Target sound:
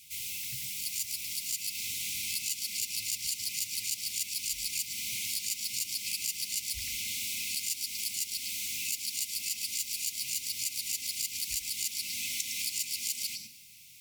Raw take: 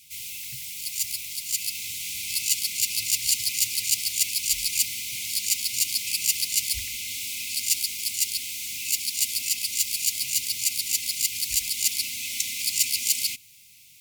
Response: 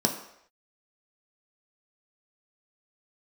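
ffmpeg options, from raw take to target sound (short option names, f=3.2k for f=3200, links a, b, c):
-filter_complex "[0:a]asplit=2[a][b];[1:a]atrim=start_sample=2205,adelay=107[c];[b][c]afir=irnorm=-1:irlink=0,volume=-20dB[d];[a][d]amix=inputs=2:normalize=0,acompressor=threshold=-29dB:ratio=6,volume=-1.5dB"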